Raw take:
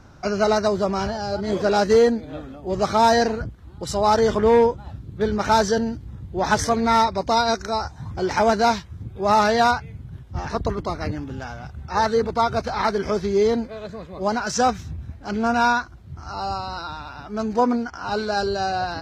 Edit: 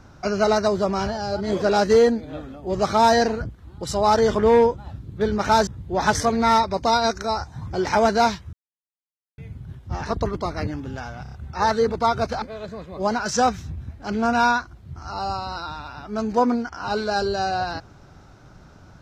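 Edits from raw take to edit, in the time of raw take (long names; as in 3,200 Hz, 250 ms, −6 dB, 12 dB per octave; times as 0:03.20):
0:05.67–0:06.11: remove
0:08.97–0:09.82: silence
0:11.67: stutter 0.03 s, 4 plays
0:12.77–0:13.63: remove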